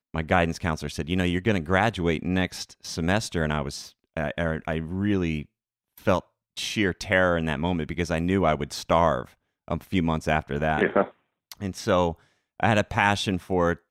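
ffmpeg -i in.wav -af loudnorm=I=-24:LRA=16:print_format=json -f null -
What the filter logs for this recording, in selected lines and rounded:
"input_i" : "-25.5",
"input_tp" : "-6.0",
"input_lra" : "3.2",
"input_thresh" : "-35.9",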